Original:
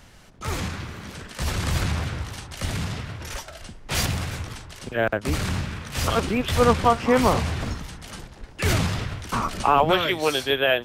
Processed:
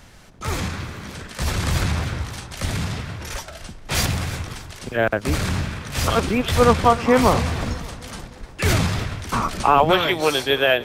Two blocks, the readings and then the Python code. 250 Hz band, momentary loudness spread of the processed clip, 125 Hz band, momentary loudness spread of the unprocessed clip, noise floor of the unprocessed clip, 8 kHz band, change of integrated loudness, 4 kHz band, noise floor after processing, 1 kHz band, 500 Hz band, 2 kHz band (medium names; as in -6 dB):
+3.0 dB, 17 LU, +3.0 dB, 17 LU, -46 dBFS, +3.0 dB, +3.0 dB, +2.5 dB, -41 dBFS, +3.0 dB, +3.0 dB, +3.0 dB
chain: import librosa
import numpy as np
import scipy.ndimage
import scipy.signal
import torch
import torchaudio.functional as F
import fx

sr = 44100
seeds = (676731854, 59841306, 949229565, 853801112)

y = fx.notch(x, sr, hz=2900.0, q=29.0)
y = fx.echo_feedback(y, sr, ms=302, feedback_pct=54, wet_db=-20)
y = y * librosa.db_to_amplitude(3.0)